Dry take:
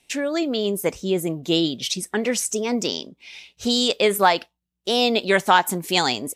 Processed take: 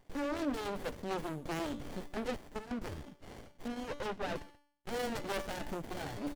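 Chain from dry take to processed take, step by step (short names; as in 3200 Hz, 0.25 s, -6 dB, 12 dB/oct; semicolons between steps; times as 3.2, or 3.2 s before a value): 4.95–5.86 bell 540 Hz +5 dB 1.1 oct; tube stage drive 30 dB, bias 0.75; speakerphone echo 0.13 s, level -12 dB; reverb removal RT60 0.65 s; limiter -31 dBFS, peak gain reduction 5.5 dB; notch 470 Hz, Q 12; 2.36–2.82 level quantiser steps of 12 dB; low shelf 420 Hz -6 dB; resonator 290 Hz, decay 0.62 s, mix 70%; 3.68–4.36 steep low-pass 3000 Hz; running maximum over 33 samples; gain +14.5 dB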